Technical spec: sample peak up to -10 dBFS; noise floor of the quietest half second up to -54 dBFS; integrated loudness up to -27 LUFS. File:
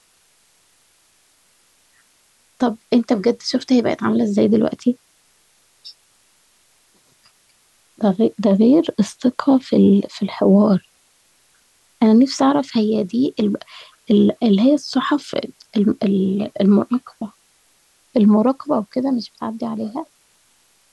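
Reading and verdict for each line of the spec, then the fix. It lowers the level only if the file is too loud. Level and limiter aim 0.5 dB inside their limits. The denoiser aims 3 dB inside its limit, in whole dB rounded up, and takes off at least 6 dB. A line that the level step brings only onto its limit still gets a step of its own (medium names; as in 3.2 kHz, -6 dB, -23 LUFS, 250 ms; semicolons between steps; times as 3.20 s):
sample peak -5.0 dBFS: fail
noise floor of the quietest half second -58 dBFS: pass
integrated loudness -17.5 LUFS: fail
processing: trim -10 dB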